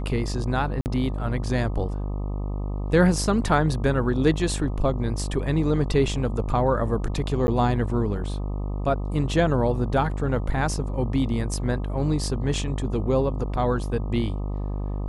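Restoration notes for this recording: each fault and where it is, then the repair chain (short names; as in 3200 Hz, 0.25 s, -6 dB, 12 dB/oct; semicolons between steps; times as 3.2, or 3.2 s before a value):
buzz 50 Hz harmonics 25 -28 dBFS
0.81–0.86 gap 49 ms
7.47–7.48 gap 10 ms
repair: de-hum 50 Hz, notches 25; interpolate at 0.81, 49 ms; interpolate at 7.47, 10 ms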